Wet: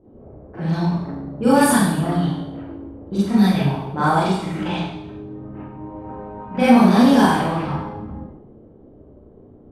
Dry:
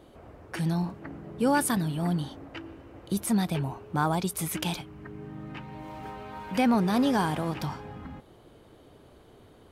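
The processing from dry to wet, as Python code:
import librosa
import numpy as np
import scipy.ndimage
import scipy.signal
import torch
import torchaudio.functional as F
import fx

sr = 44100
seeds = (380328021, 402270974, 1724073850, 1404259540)

y = fx.env_lowpass(x, sr, base_hz=410.0, full_db=-20.0)
y = fx.rev_schroeder(y, sr, rt60_s=0.8, comb_ms=29, drr_db=-10.0)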